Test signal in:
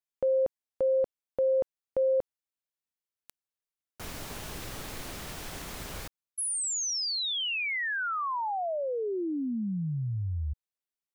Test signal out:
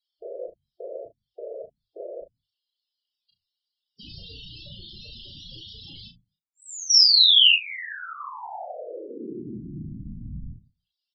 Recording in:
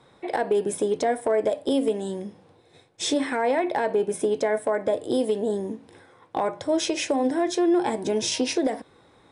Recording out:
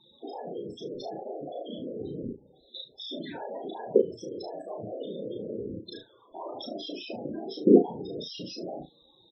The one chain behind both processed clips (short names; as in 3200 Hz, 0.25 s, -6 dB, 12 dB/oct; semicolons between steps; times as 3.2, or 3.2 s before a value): band shelf 3900 Hz +12 dB 1.2 oct; notches 50/100 Hz; in parallel at +1 dB: compressor 10:1, threshold -32 dBFS; on the sum: limiter -16 dBFS; level quantiser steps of 21 dB; whisperiser; loudest bins only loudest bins 16; early reflections 34 ms -3.5 dB, 71 ms -15.5 dB; downsampling 16000 Hz; gain +4.5 dB